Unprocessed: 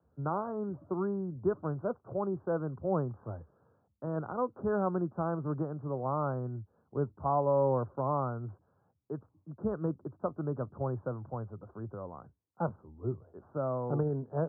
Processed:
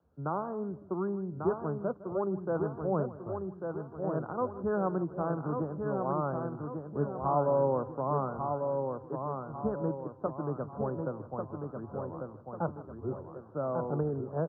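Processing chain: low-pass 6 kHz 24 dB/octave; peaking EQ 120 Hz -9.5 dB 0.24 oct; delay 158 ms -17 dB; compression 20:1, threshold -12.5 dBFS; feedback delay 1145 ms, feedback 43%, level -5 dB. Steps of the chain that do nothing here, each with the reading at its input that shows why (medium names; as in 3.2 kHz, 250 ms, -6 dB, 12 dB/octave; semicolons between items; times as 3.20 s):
low-pass 6 kHz: input has nothing above 1.5 kHz; compression, threshold -12.5 dBFS: peak at its input -18.0 dBFS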